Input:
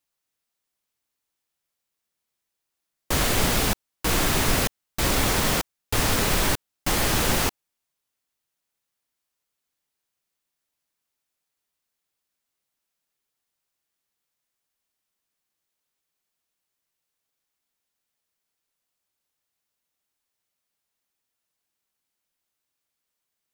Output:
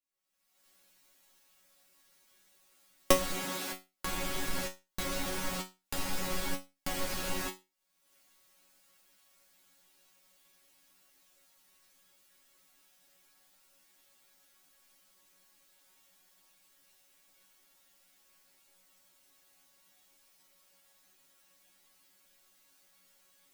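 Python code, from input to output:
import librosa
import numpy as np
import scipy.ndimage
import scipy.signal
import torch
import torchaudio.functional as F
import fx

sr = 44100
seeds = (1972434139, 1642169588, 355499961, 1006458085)

y = fx.recorder_agc(x, sr, target_db=-12.0, rise_db_per_s=45.0, max_gain_db=30)
y = fx.highpass(y, sr, hz=fx.line((3.31, 110.0), (3.72, 320.0)), slope=12, at=(3.31, 3.72), fade=0.02)
y = fx.resonator_bank(y, sr, root=54, chord='fifth', decay_s=0.25)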